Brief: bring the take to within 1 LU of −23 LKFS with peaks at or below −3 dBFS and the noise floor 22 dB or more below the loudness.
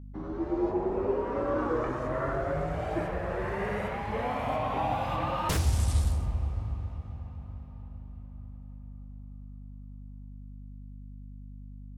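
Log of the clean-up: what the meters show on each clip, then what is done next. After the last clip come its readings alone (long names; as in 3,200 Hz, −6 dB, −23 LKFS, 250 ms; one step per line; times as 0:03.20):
mains hum 50 Hz; hum harmonics up to 250 Hz; level of the hum −40 dBFS; integrated loudness −31.0 LKFS; sample peak −15.5 dBFS; target loudness −23.0 LKFS
→ hum removal 50 Hz, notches 5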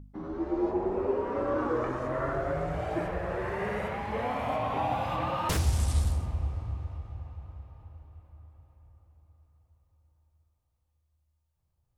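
mains hum none found; integrated loudness −31.0 LKFS; sample peak −15.0 dBFS; target loudness −23.0 LKFS
→ level +8 dB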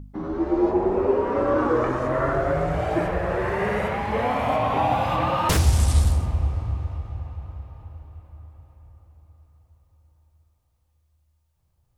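integrated loudness −23.0 LKFS; sample peak −7.0 dBFS; background noise floor −68 dBFS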